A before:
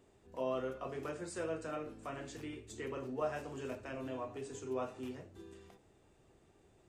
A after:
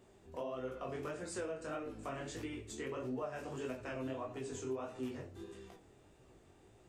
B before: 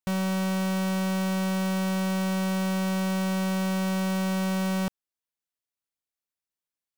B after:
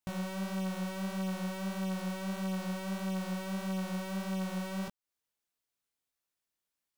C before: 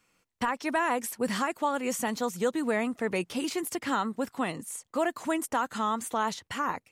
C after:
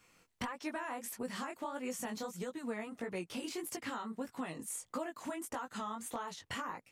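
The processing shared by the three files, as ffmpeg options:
-af "acompressor=threshold=-41dB:ratio=10,flanger=delay=15.5:depth=7.9:speed=1.6,aeval=exprs='0.0188*(abs(mod(val(0)/0.0188+3,4)-2)-1)':c=same,volume=6.5dB"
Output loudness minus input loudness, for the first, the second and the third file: -1.0, -9.0, -11.0 LU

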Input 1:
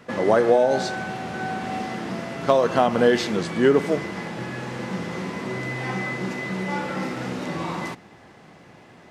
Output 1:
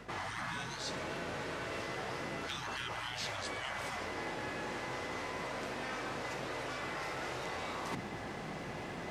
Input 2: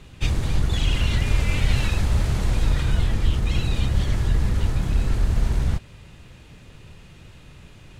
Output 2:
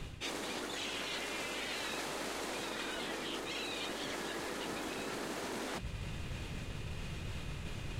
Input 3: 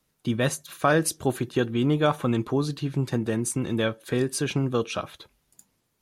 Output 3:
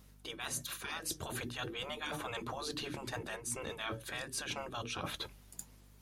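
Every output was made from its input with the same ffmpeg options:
-af "bandreject=f=60:t=h:w=6,bandreject=f=120:t=h:w=6,bandreject=f=180:t=h:w=6,bandreject=f=240:t=h:w=6,bandreject=f=300:t=h:w=6,afftfilt=real='re*lt(hypot(re,im),0.126)':imag='im*lt(hypot(re,im),0.126)':win_size=1024:overlap=0.75,areverse,acompressor=threshold=-45dB:ratio=8,areverse,aeval=exprs='val(0)+0.000447*(sin(2*PI*50*n/s)+sin(2*PI*2*50*n/s)/2+sin(2*PI*3*50*n/s)/3+sin(2*PI*4*50*n/s)/4+sin(2*PI*5*50*n/s)/5)':c=same,volume=7.5dB"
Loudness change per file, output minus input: -15.5, -16.0, -14.5 LU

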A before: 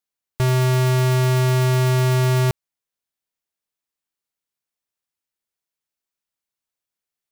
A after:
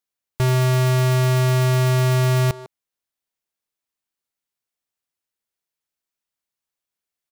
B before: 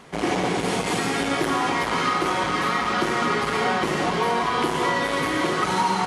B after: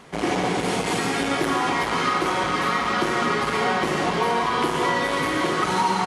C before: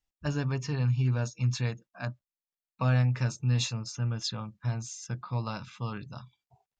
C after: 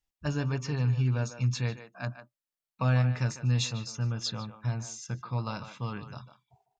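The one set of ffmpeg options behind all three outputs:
-filter_complex "[0:a]asplit=2[a][b];[b]adelay=150,highpass=300,lowpass=3.4k,asoftclip=type=hard:threshold=-19dB,volume=-10dB[c];[a][c]amix=inputs=2:normalize=0"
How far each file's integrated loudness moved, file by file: 0.0, +0.5, 0.0 LU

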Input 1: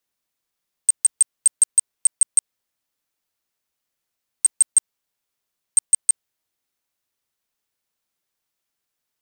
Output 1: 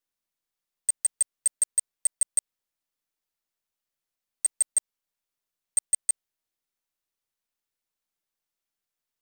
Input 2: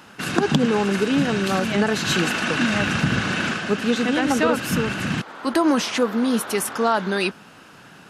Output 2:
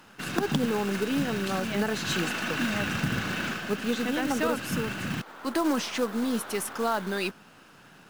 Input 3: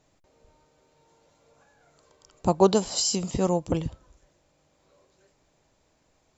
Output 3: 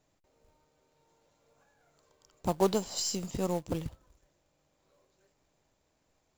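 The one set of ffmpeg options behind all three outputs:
-af "aeval=exprs='if(lt(val(0),0),0.708*val(0),val(0))':c=same,acrusher=bits=4:mode=log:mix=0:aa=0.000001,aeval=exprs='0.841*(cos(1*acos(clip(val(0)/0.841,-1,1)))-cos(1*PI/2))+0.0596*(cos(4*acos(clip(val(0)/0.841,-1,1)))-cos(4*PI/2))':c=same,volume=-6dB"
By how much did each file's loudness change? -8.0, -7.5, -7.5 LU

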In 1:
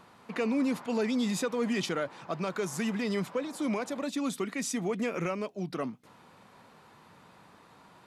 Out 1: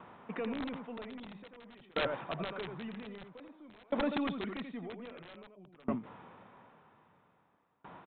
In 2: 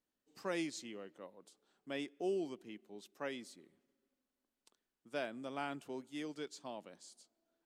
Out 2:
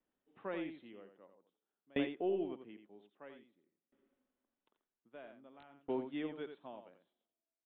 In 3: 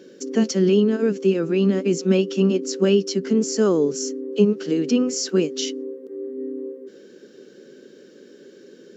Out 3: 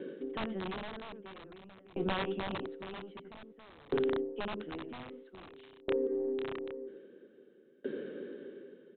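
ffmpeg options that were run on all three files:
-af "lowpass=f=1.3k:p=1,dynaudnorm=f=250:g=5:m=4dB,lowshelf=f=400:g=-4.5,aeval=exprs='(tanh(3.55*val(0)+0.35)-tanh(0.35))/3.55':c=same,areverse,acompressor=threshold=-33dB:ratio=5,areverse,aecho=1:1:86:0.422,aresample=8000,aeval=exprs='(mod(25.1*val(0)+1,2)-1)/25.1':c=same,aresample=44100,alimiter=level_in=6dB:limit=-24dB:level=0:latency=1:release=23,volume=-6dB,aeval=exprs='val(0)*pow(10,-29*if(lt(mod(0.51*n/s,1),2*abs(0.51)/1000),1-mod(0.51*n/s,1)/(2*abs(0.51)/1000),(mod(0.51*n/s,1)-2*abs(0.51)/1000)/(1-2*abs(0.51)/1000))/20)':c=same,volume=8dB"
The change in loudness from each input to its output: -7.0, +2.5, -17.0 LU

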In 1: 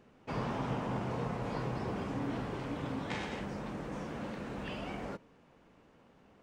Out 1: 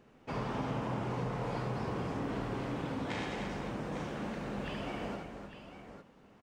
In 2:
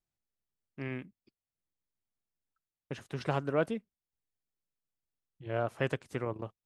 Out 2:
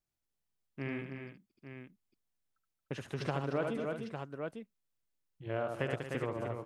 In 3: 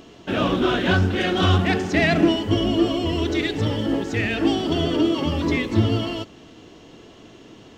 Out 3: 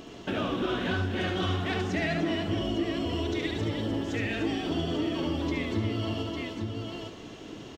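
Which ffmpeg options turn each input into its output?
-af "aecho=1:1:73|226|302|351|852:0.531|0.188|0.398|0.15|0.299,acompressor=threshold=-32dB:ratio=2.5"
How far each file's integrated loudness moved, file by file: +0.5, -2.5, -9.0 LU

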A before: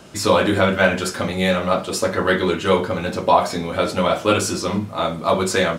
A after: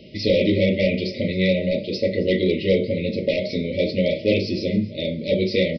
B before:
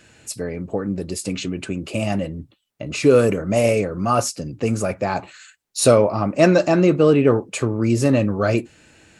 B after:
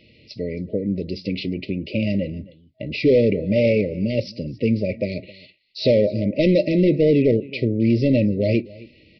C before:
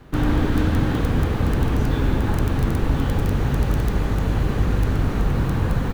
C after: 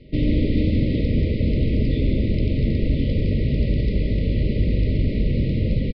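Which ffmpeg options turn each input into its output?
-af "equalizer=f=220:w=6.3:g=4,aecho=1:1:267:0.0841,aresample=11025,asoftclip=type=hard:threshold=-11dB,aresample=44100,afftfilt=real='re*(1-between(b*sr/4096,640,1900))':imag='im*(1-between(b*sr/4096,640,1900))':win_size=4096:overlap=0.75,adynamicequalizer=threshold=0.00501:dfrequency=3100:dqfactor=4.1:tfrequency=3100:tqfactor=4.1:attack=5:release=100:ratio=0.375:range=3:mode=cutabove:tftype=bell"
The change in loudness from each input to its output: -2.5, -1.0, 0.0 LU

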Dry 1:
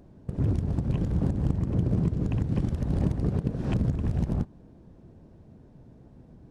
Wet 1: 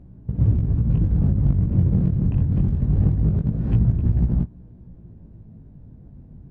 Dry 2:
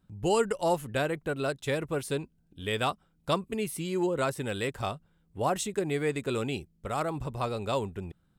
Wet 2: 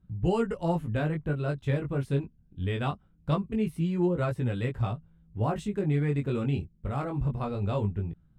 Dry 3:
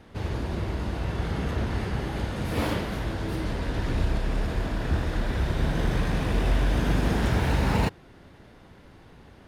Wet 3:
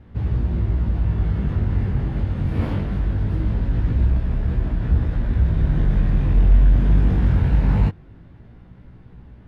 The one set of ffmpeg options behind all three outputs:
-filter_complex "[0:a]bass=f=250:g=14,treble=f=4k:g=-13,asplit=2[a][b];[b]aeval=exprs='0.237*(abs(mod(val(0)/0.237+3,4)-2)-1)':c=same,volume=-12dB[c];[a][c]amix=inputs=2:normalize=0,flanger=delay=16.5:depth=5.5:speed=0.22,volume=-3dB"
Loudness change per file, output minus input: +7.0, +1.0, +7.0 LU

